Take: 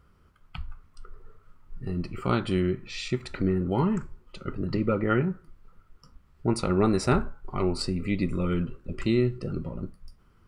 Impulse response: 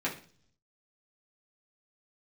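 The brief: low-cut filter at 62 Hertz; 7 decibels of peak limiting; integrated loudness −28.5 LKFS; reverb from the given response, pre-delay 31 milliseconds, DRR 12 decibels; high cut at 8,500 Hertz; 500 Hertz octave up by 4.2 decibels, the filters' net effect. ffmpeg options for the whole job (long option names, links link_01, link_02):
-filter_complex "[0:a]highpass=62,lowpass=8500,equalizer=frequency=500:width_type=o:gain=6,alimiter=limit=-16.5dB:level=0:latency=1,asplit=2[link_01][link_02];[1:a]atrim=start_sample=2205,adelay=31[link_03];[link_02][link_03]afir=irnorm=-1:irlink=0,volume=-19dB[link_04];[link_01][link_04]amix=inputs=2:normalize=0,volume=0.5dB"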